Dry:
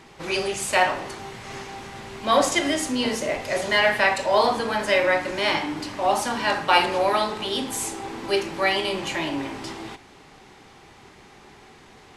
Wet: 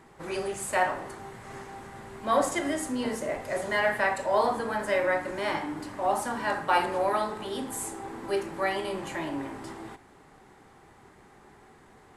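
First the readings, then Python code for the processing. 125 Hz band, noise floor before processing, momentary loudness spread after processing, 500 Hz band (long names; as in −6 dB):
−5.0 dB, −50 dBFS, 16 LU, −5.0 dB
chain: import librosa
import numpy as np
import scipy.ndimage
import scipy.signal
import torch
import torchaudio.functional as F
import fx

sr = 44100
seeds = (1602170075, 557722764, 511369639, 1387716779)

y = fx.band_shelf(x, sr, hz=3800.0, db=-9.0, octaves=1.7)
y = y * librosa.db_to_amplitude(-5.0)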